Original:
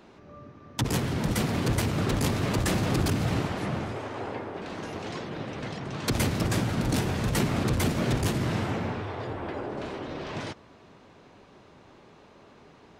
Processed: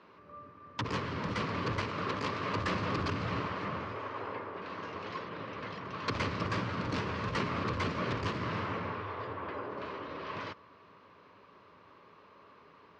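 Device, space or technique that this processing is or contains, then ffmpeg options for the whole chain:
guitar cabinet: -filter_complex "[0:a]highpass=110,equalizer=f=140:t=q:w=4:g=-10,equalizer=f=230:t=q:w=4:g=-8,equalizer=f=340:t=q:w=4:g=-6,equalizer=f=750:t=q:w=4:g=-10,equalizer=f=1100:t=q:w=4:g=9,equalizer=f=3600:t=q:w=4:g=-5,lowpass=f=4500:w=0.5412,lowpass=f=4500:w=1.3066,asettb=1/sr,asplit=3[s0][s1][s2];[s0]atrim=end=1.844[s3];[s1]atrim=start=1.84:end=2.54,asetpts=PTS-STARTPTS,afade=t=in:d=0.004:c=qsin,afade=t=out:st=0.696:d=0.004:c=qsin,highpass=f=180:p=1[s4];[s2]atrim=start=2.536[s5];[s3][s4]acrossfade=d=0.004:c1=hsin:c2=qsin[s6];[s6][s5]acrossfade=d=0.004:c1=qsin:c2=hsin,volume=0.708"

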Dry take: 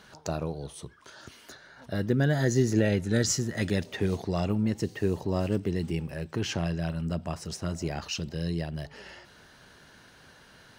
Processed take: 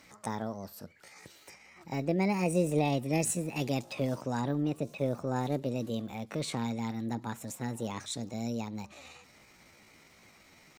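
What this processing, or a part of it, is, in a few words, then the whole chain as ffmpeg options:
chipmunk voice: -filter_complex "[0:a]asettb=1/sr,asplit=3[s0][s1][s2];[s0]atrim=end=4.414[s3];[s1]atrim=start=4.41:end=5.36,asetpts=PTS-STARTPTS,afade=t=in:d=0.004:c=qsin,afade=t=out:st=0.946:d=0.004:c=qsin,acrossover=split=2700[s4][s5];[s5]acompressor=threshold=0.00282:ratio=4:attack=1:release=60[s6];[s4][s6]amix=inputs=2:normalize=0[s7];[s2]atrim=start=5.356[s8];[s3][s7]acrossfade=d=0.004:c1=hsin:c2=qsin[s9];[s9][s8]acrossfade=d=0.004:c1=qsin:c2=hsin,asetrate=60591,aresample=44100,atempo=0.727827,volume=0.631"

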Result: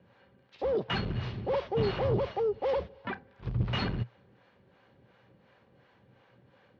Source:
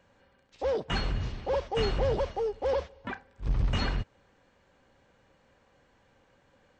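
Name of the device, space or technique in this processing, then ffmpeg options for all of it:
guitar amplifier with harmonic tremolo: -filter_complex "[0:a]acrossover=split=510[s0][s1];[s0]aeval=exprs='val(0)*(1-0.7/2+0.7/2*cos(2*PI*2.8*n/s))':c=same[s2];[s1]aeval=exprs='val(0)*(1-0.7/2-0.7/2*cos(2*PI*2.8*n/s))':c=same[s3];[s2][s3]amix=inputs=2:normalize=0,asoftclip=type=tanh:threshold=0.0422,highpass=80,equalizer=f=120:t=q:w=4:g=10,equalizer=f=190:t=q:w=4:g=6,equalizer=f=380:t=q:w=4:g=5,lowpass=f=4400:w=0.5412,lowpass=f=4400:w=1.3066,volume=1.58"

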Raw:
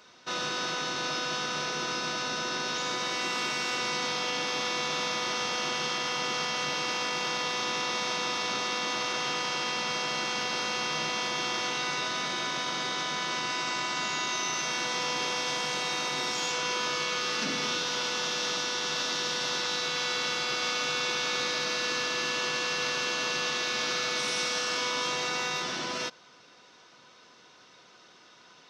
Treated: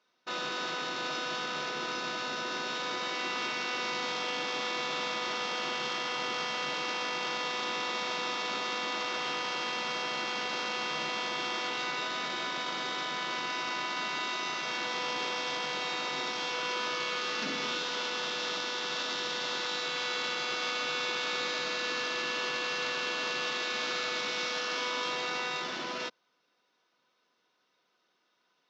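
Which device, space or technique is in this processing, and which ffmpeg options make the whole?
over-cleaned archive recording: -af "highpass=190,lowpass=5500,afwtdn=0.01,volume=0.794"

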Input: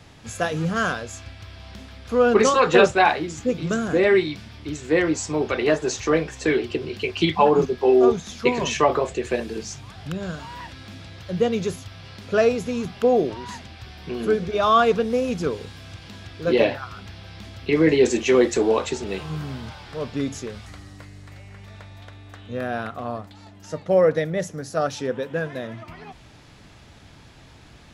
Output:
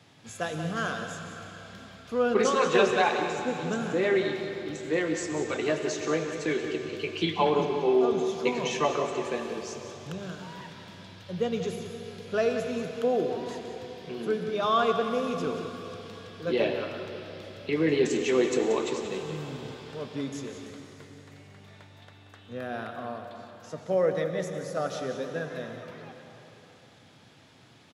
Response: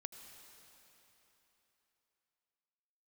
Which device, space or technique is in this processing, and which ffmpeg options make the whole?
PA in a hall: -filter_complex "[0:a]highpass=f=110:w=0.5412,highpass=f=110:w=1.3066,equalizer=f=3400:t=o:w=0.34:g=3,aecho=1:1:182:0.299[s0];[1:a]atrim=start_sample=2205[s1];[s0][s1]afir=irnorm=-1:irlink=0,volume=0.708"

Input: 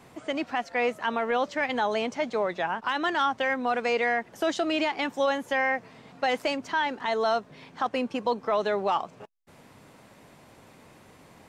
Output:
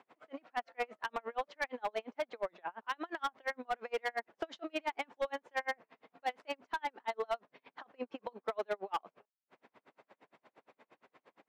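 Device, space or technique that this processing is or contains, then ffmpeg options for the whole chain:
helicopter radio: -af "highpass=370,lowpass=2700,aeval=exprs='val(0)*pow(10,-39*(0.5-0.5*cos(2*PI*8.6*n/s))/20)':c=same,asoftclip=type=hard:threshold=0.0531,volume=0.75"

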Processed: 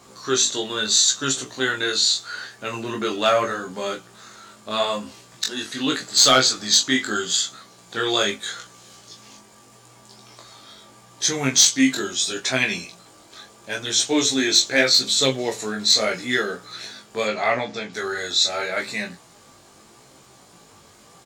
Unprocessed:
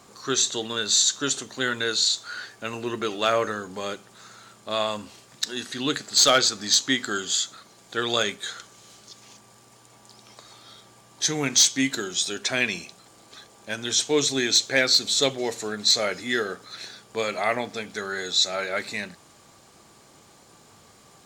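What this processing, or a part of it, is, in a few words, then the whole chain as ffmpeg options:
double-tracked vocal: -filter_complex "[0:a]asettb=1/sr,asplit=3[s0][s1][s2];[s0]atrim=end=17.254[s3];[s1]atrim=start=17.25:end=17.93,asetpts=PTS-STARTPTS,afade=t=in:d=0.004:c=qsin,afade=t=out:st=0.676:d=0.004:c=qsin,lowpass=f=6600:w=0.5412,lowpass=f=6600:w=1.3066[s4];[s2]atrim=start=17.926[s5];[s3][s4]acrossfade=d=0.004:c1=hsin:c2=qsin[s6];[s6][s5]acrossfade=d=0.004:c1=qsin:c2=hsin,asplit=2[s7][s8];[s8]adelay=23,volume=0.531[s9];[s7][s9]amix=inputs=2:normalize=0,flanger=delay=15:depth=5:speed=0.79,volume=1.78"

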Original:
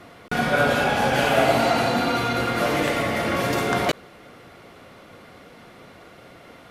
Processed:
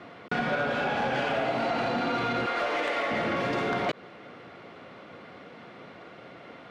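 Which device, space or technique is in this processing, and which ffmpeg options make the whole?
AM radio: -filter_complex "[0:a]asettb=1/sr,asplit=3[s0][s1][s2];[s0]atrim=end=2.464[s3];[s1]atrim=start=2.46:end=3.11,asetpts=PTS-STARTPTS,afade=t=in:d=0.004:c=qsin,afade=t=out:st=0.646:d=0.004:c=qsin,highpass=470[s4];[s2]atrim=start=3.106[s5];[s3][s4]acrossfade=d=0.004:c1=hsin:c2=qsin[s6];[s6][s5]acrossfade=d=0.004:c1=qsin:c2=hsin,highpass=130,lowpass=3600,acompressor=threshold=0.0708:ratio=6,asoftclip=type=tanh:threshold=0.1"

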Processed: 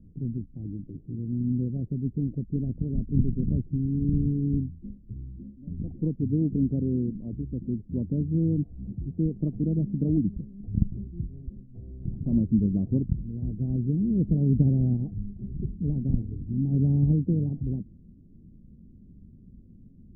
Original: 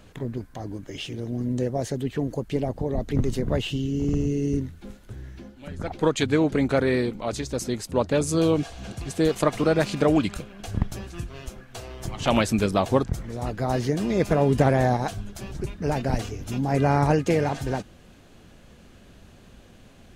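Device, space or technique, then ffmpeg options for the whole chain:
the neighbour's flat through the wall: -af "lowpass=f=280:w=0.5412,lowpass=f=280:w=1.3066,equalizer=f=180:t=o:w=0.77:g=3.5"

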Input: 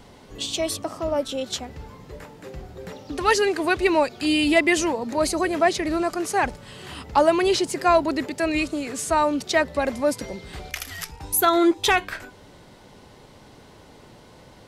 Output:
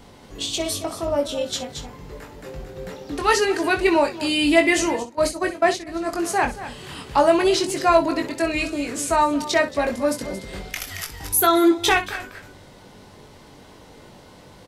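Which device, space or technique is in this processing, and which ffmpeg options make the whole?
ducked delay: -filter_complex "[0:a]asplit=3[s0][s1][s2];[s1]adelay=225,volume=0.501[s3];[s2]apad=whole_len=657071[s4];[s3][s4]sidechaincompress=threshold=0.0355:ratio=8:attack=16:release=505[s5];[s0][s5]amix=inputs=2:normalize=0,highshelf=f=10000:g=2.5,asplit=3[s6][s7][s8];[s6]afade=t=out:st=5.02:d=0.02[s9];[s7]agate=range=0.1:threshold=0.0794:ratio=16:detection=peak,afade=t=in:st=5.02:d=0.02,afade=t=out:st=6.11:d=0.02[s10];[s8]afade=t=in:st=6.11:d=0.02[s11];[s9][s10][s11]amix=inputs=3:normalize=0,aecho=1:1:21|63:0.562|0.224"

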